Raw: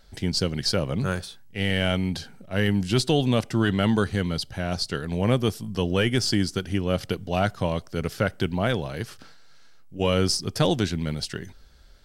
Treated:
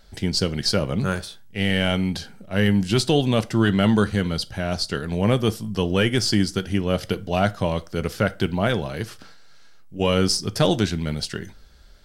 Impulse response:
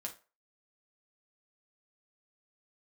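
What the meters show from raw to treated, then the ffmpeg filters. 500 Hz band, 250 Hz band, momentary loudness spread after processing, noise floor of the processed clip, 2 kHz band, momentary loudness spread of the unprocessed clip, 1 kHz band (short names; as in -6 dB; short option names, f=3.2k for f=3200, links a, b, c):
+2.5 dB, +3.5 dB, 9 LU, -44 dBFS, +2.5 dB, 9 LU, +2.5 dB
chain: -filter_complex "[0:a]asplit=2[a][b];[1:a]atrim=start_sample=2205[c];[b][c]afir=irnorm=-1:irlink=0,volume=-5dB[d];[a][d]amix=inputs=2:normalize=0"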